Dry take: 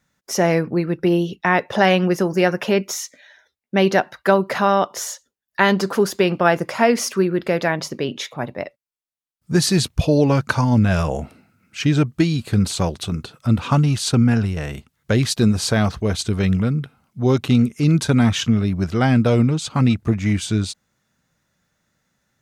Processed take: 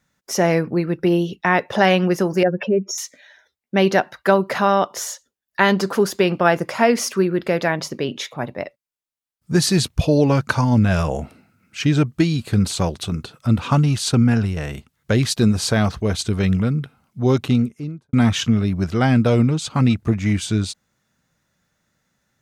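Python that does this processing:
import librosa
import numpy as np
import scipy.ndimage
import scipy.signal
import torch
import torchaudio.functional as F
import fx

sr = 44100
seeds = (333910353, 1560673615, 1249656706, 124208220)

y = fx.spec_expand(x, sr, power=2.2, at=(2.43, 2.98))
y = fx.studio_fade_out(y, sr, start_s=17.33, length_s=0.8)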